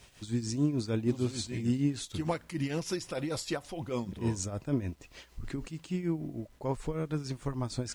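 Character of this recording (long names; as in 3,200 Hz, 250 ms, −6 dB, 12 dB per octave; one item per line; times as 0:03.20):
tremolo triangle 6.6 Hz, depth 75%
a quantiser's noise floor 12 bits, dither none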